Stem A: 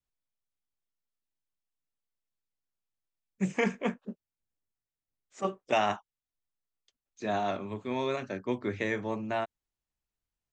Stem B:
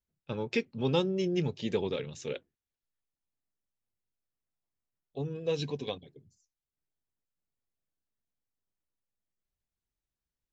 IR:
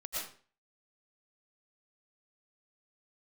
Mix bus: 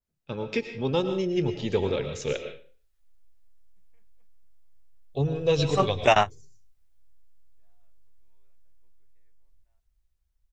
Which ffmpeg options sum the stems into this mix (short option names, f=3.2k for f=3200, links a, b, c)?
-filter_complex "[0:a]adelay=350,volume=2dB[a];[1:a]adynamicequalizer=threshold=0.00355:dfrequency=2000:dqfactor=0.7:tfrequency=2000:tqfactor=0.7:attack=5:release=100:ratio=0.375:range=2.5:mode=cutabove:tftype=highshelf,volume=0.5dB,asplit=3[b][c][d];[c]volume=-6.5dB[e];[d]apad=whole_len=479687[f];[a][f]sidechaingate=range=-58dB:threshold=-54dB:ratio=16:detection=peak[g];[2:a]atrim=start_sample=2205[h];[e][h]afir=irnorm=-1:irlink=0[i];[g][b][i]amix=inputs=3:normalize=0,asubboost=boost=12:cutoff=64,dynaudnorm=f=340:g=11:m=7.5dB"